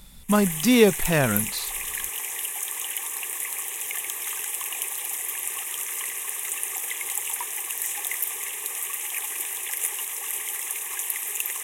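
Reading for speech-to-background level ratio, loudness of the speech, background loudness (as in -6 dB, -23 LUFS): 6.0 dB, -21.5 LUFS, -27.5 LUFS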